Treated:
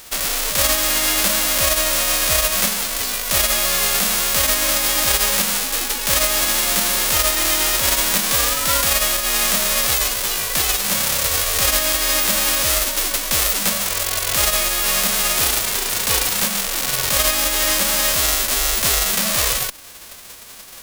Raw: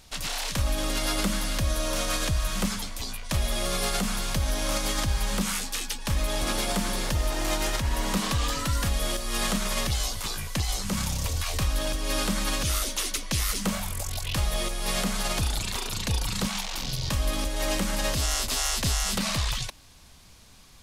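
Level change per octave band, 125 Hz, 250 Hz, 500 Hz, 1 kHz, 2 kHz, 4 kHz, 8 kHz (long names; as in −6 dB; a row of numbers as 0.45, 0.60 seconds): −3.5, 0.0, +7.5, +8.5, +11.5, +11.0, +13.5 decibels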